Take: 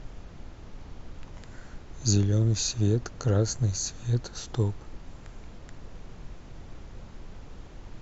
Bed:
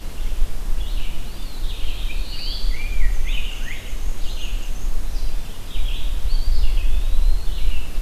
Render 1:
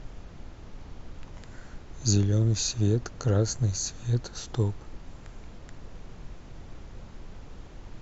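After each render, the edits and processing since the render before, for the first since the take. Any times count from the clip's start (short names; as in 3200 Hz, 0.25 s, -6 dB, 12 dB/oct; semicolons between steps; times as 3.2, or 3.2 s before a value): nothing audible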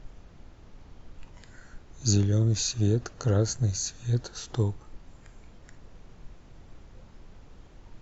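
noise print and reduce 6 dB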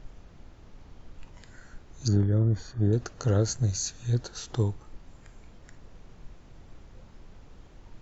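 2.08–2.93 polynomial smoothing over 41 samples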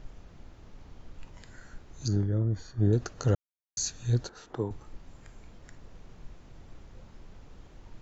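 2.06–2.78 resonator 160 Hz, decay 0.43 s, mix 40%; 3.35–3.77 mute; 4.29–4.71 three-band isolator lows -13 dB, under 210 Hz, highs -16 dB, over 2100 Hz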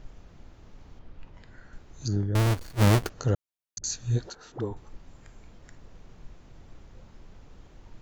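0.99–1.73 air absorption 160 m; 2.35–3.1 half-waves squared off; 3.78–4.89 dispersion highs, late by 58 ms, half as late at 510 Hz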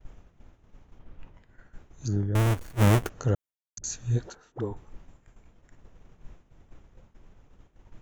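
expander -41 dBFS; bell 4500 Hz -8.5 dB 0.55 oct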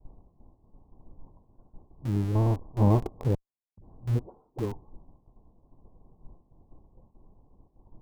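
rippled Chebyshev low-pass 1100 Hz, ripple 3 dB; in parallel at -5.5 dB: Schmitt trigger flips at -33.5 dBFS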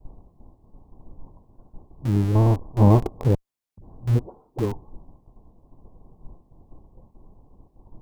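gain +6.5 dB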